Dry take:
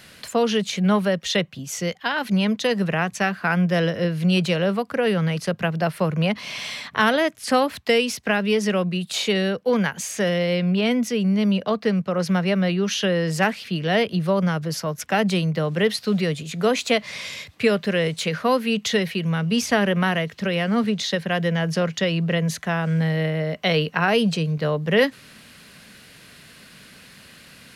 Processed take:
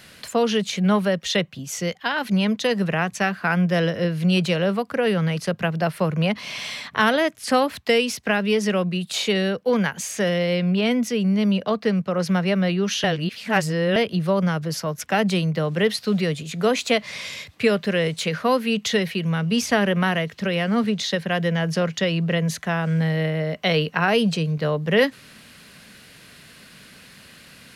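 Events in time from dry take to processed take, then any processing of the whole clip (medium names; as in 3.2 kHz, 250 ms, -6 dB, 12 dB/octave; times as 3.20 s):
13.04–13.96 s: reverse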